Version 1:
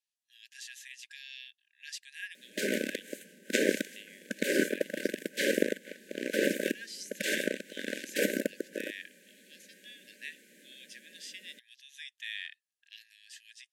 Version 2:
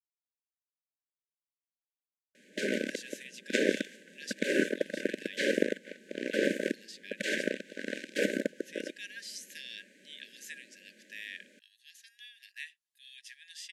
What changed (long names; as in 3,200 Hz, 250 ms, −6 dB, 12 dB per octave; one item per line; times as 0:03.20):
speech: entry +2.35 s
background: add high-frequency loss of the air 62 metres